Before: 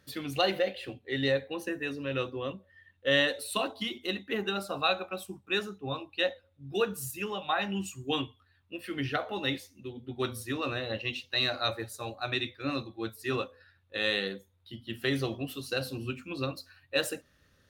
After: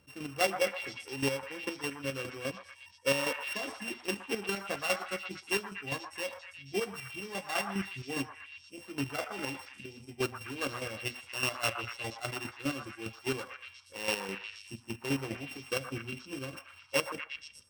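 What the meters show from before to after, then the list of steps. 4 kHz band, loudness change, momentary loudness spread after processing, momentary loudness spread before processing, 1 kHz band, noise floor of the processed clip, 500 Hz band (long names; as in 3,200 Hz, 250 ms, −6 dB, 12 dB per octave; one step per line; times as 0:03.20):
−5.5 dB, −3.0 dB, 12 LU, 11 LU, −3.0 dB, −57 dBFS, −4.0 dB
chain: samples sorted by size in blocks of 16 samples
high-shelf EQ 7,300 Hz −5 dB
square-wave tremolo 4.9 Hz, depth 60%, duty 30%
echo through a band-pass that steps 119 ms, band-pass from 1,100 Hz, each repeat 0.7 octaves, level −2.5 dB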